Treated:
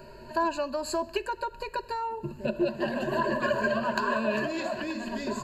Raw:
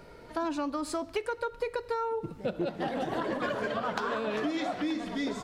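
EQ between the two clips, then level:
EQ curve with evenly spaced ripples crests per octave 1.4, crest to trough 18 dB
0.0 dB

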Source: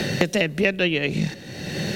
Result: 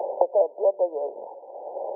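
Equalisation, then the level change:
Butterworth high-pass 540 Hz 36 dB per octave
linear-phase brick-wall low-pass 1,000 Hz
+8.0 dB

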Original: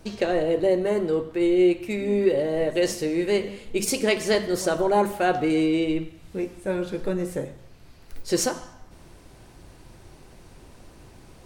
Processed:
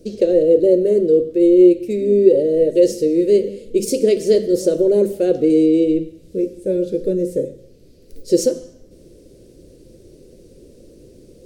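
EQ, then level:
drawn EQ curve 110 Hz 0 dB, 520 Hz +13 dB, 830 Hz −22 dB, 5,000 Hz +1 dB
−1.0 dB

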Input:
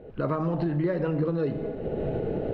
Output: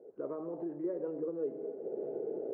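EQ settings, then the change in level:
four-pole ladder band-pass 460 Hz, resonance 50%
high-frequency loss of the air 200 metres
0.0 dB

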